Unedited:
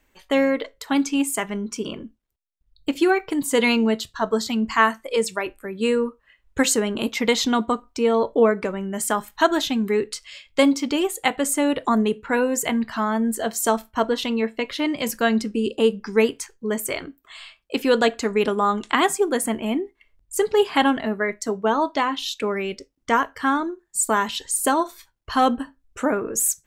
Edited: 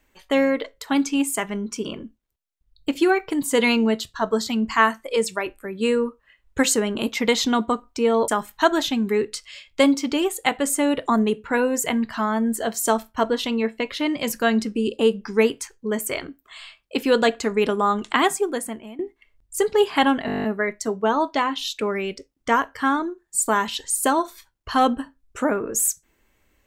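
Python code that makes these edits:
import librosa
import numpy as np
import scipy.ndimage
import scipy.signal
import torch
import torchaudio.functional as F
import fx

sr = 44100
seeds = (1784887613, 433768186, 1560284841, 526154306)

y = fx.edit(x, sr, fx.cut(start_s=8.28, length_s=0.79),
    fx.fade_out_to(start_s=19.03, length_s=0.75, floor_db=-22.0),
    fx.stutter(start_s=21.05, slice_s=0.02, count=10), tone=tone)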